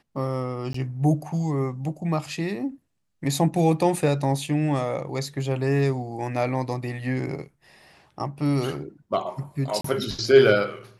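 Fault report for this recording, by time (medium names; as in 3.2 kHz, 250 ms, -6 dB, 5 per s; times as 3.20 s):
0.73–0.74 s: dropout 14 ms
9.81–9.84 s: dropout 34 ms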